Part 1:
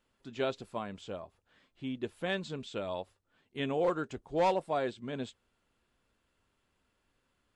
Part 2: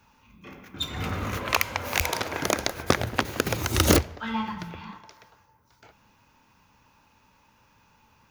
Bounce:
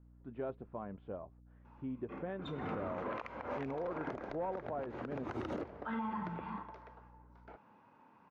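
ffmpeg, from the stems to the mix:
ffmpeg -i stem1.wav -i stem2.wav -filter_complex "[0:a]lowpass=2300,acompressor=threshold=-35dB:ratio=2.5,aeval=exprs='val(0)+0.00141*(sin(2*PI*60*n/s)+sin(2*PI*2*60*n/s)/2+sin(2*PI*3*60*n/s)/3+sin(2*PI*4*60*n/s)/4+sin(2*PI*5*60*n/s)/5)':channel_layout=same,volume=-2dB,asplit=2[link_01][link_02];[1:a]highpass=210,acompressor=threshold=-29dB:ratio=6,adelay=1650,volume=1.5dB[link_03];[link_02]apad=whole_len=439023[link_04];[link_03][link_04]sidechaincompress=threshold=-45dB:ratio=4:attack=5.7:release=116[link_05];[link_01][link_05]amix=inputs=2:normalize=0,lowpass=1200,alimiter=level_in=6.5dB:limit=-24dB:level=0:latency=1:release=50,volume=-6.5dB" out.wav

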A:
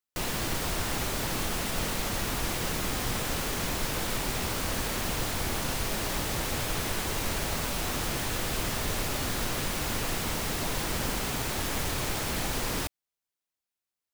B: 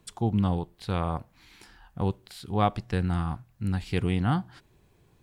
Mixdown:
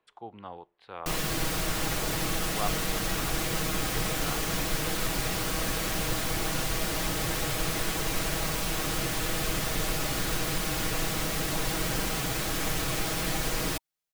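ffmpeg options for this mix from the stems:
ffmpeg -i stem1.wav -i stem2.wav -filter_complex "[0:a]bandreject=frequency=920:width=13,aecho=1:1:6.3:0.56,adelay=900,volume=0dB[link_01];[1:a]acrossover=split=410 3200:gain=0.0708 1 0.0891[link_02][link_03][link_04];[link_02][link_03][link_04]amix=inputs=3:normalize=0,volume=-6.5dB[link_05];[link_01][link_05]amix=inputs=2:normalize=0" out.wav

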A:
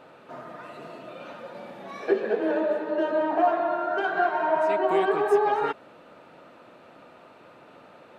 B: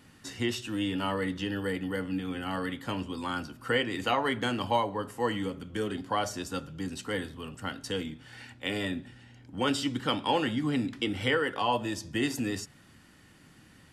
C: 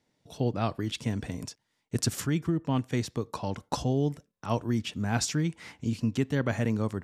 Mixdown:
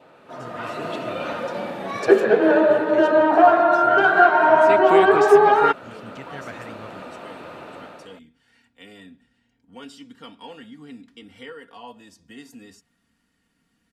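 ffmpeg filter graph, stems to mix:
ffmpeg -i stem1.wav -i stem2.wav -i stem3.wav -filter_complex "[0:a]adynamicequalizer=threshold=0.00398:dfrequency=1400:dqfactor=5.4:tfrequency=1400:tqfactor=5.4:attack=5:release=100:ratio=0.375:range=3:mode=boostabove:tftype=bell,dynaudnorm=framelen=230:gausssize=5:maxgain=13dB,volume=-0.5dB[link_01];[1:a]aecho=1:1:4.3:0.65,adelay=150,volume=-14.5dB[link_02];[2:a]equalizer=frequency=1900:width_type=o:width=2.7:gain=13.5,volume=-16dB[link_03];[link_01][link_02][link_03]amix=inputs=3:normalize=0" out.wav

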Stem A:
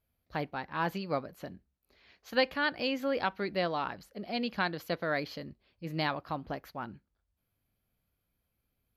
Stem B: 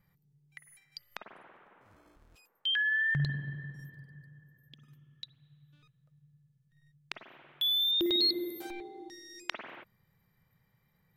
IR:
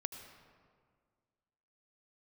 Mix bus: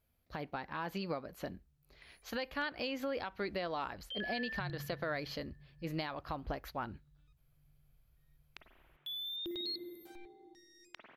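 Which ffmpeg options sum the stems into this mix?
-filter_complex "[0:a]asubboost=boost=8.5:cutoff=54,acompressor=threshold=-35dB:ratio=5,volume=2dB[link_01];[1:a]lowshelf=frequency=120:gain=10,adelay=1450,volume=-13dB[link_02];[link_01][link_02]amix=inputs=2:normalize=0,alimiter=level_in=3dB:limit=-24dB:level=0:latency=1:release=118,volume=-3dB"

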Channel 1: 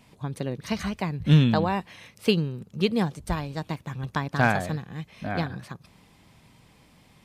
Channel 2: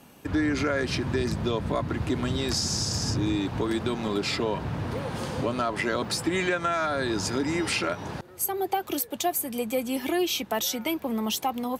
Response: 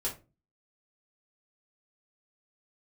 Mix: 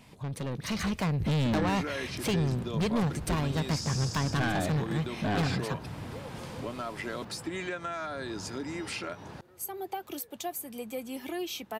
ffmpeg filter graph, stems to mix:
-filter_complex "[0:a]alimiter=limit=-16.5dB:level=0:latency=1:release=248,asoftclip=type=tanh:threshold=-32.5dB,volume=1.5dB[link_01];[1:a]adelay=1200,volume=-15.5dB[link_02];[link_01][link_02]amix=inputs=2:normalize=0,dynaudnorm=framelen=130:gausssize=11:maxgain=6dB"

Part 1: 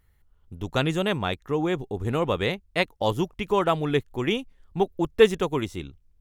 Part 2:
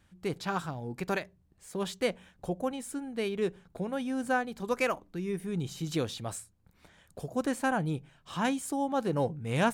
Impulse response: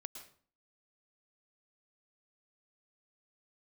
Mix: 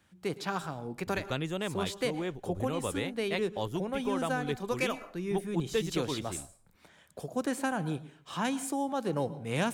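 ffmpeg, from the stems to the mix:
-filter_complex "[0:a]adelay=550,volume=-9dB[link_01];[1:a]highpass=frequency=180:poles=1,volume=-1.5dB,asplit=2[link_02][link_03];[link_03]volume=-4dB[link_04];[2:a]atrim=start_sample=2205[link_05];[link_04][link_05]afir=irnorm=-1:irlink=0[link_06];[link_01][link_02][link_06]amix=inputs=3:normalize=0,acrossover=split=270|3000[link_07][link_08][link_09];[link_08]acompressor=threshold=-29dB:ratio=6[link_10];[link_07][link_10][link_09]amix=inputs=3:normalize=0"

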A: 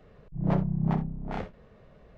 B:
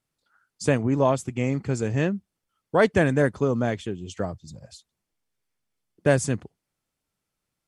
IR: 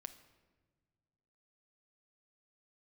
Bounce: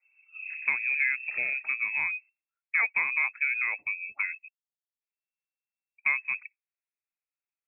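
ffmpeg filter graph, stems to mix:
-filter_complex "[0:a]acompressor=threshold=-30dB:ratio=16,volume=-7dB,asplit=2[link_01][link_02];[link_02]volume=-3dB[link_03];[1:a]deesser=0.75,equalizer=frequency=590:width_type=o:width=2.8:gain=7.5,acompressor=threshold=-23dB:ratio=2.5,volume=-4.5dB,asplit=3[link_04][link_05][link_06];[link_04]atrim=end=4.48,asetpts=PTS-STARTPTS,afade=type=out:start_time=4.476:duration=0.004:curve=hsin[link_07];[link_05]atrim=start=4.48:end=5.01,asetpts=PTS-STARTPTS,volume=0[link_08];[link_06]atrim=start=5.01,asetpts=PTS-STARTPTS,afade=type=in:duration=0.004:curve=hsin[link_09];[link_07][link_08][link_09]concat=n=3:v=0:a=1,asplit=2[link_10][link_11];[link_11]apad=whole_len=95732[link_12];[link_01][link_12]sidechaincompress=threshold=-31dB:ratio=8:attack=23:release=116[link_13];[link_03]aecho=0:1:118|236|354:1|0.18|0.0324[link_14];[link_13][link_10][link_14]amix=inputs=3:normalize=0,afftdn=noise_reduction=18:noise_floor=-49,lowpass=frequency=2300:width_type=q:width=0.5098,lowpass=frequency=2300:width_type=q:width=0.6013,lowpass=frequency=2300:width_type=q:width=0.9,lowpass=frequency=2300:width_type=q:width=2.563,afreqshift=-2700"

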